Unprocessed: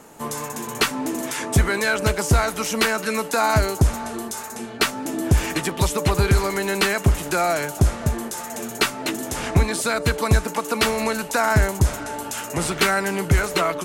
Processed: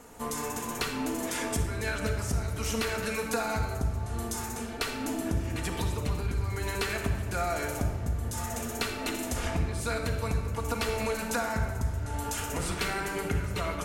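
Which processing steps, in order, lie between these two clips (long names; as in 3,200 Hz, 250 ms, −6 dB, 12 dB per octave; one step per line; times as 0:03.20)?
low shelf with overshoot 110 Hz +8.5 dB, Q 1.5
downward compressor 6 to 1, threshold −24 dBFS, peak gain reduction 20 dB
rectangular room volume 2,200 cubic metres, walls mixed, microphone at 1.8 metres
level −6 dB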